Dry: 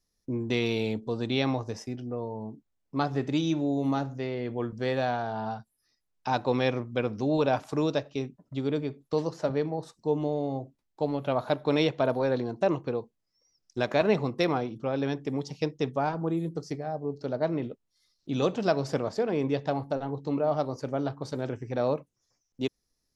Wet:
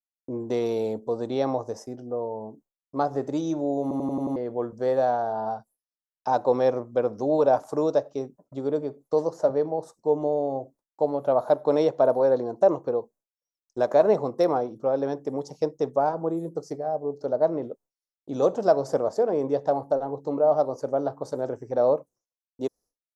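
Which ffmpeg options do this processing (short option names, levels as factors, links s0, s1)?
-filter_complex "[0:a]asplit=7[s0][s1][s2][s3][s4][s5][s6];[s0]atrim=end=3.912[s7];[s1]atrim=start=3.818:end=3.912[s8];[s2]atrim=start=3.818:end=3.912[s9];[s3]atrim=start=3.818:end=3.912[s10];[s4]atrim=start=3.818:end=3.912[s11];[s5]atrim=start=3.818:end=3.912[s12];[s6]atrim=start=4.358[s13];[s7][s8]acrossfade=d=0.004:c1=hsin:c2=hsin[s14];[s14][s9]acrossfade=d=0.004:c1=hsin:c2=hsin[s15];[s15][s10]acrossfade=d=0.004:c1=hsin:c2=hsin[s16];[s16][s11]acrossfade=d=0.004:c1=hsin:c2=hsin[s17];[s17][s12]acrossfade=d=0.004:c1=hsin:c2=hsin[s18];[s18][s13]acrossfade=d=0.004:c1=hsin:c2=hsin,highshelf=f=4500:g=7.5,agate=range=0.0224:threshold=0.00282:ratio=3:detection=peak,firequalizer=gain_entry='entry(110,0);entry(540,15);entry(2500,-10);entry(6300,3)':delay=0.05:min_phase=1,volume=0.447"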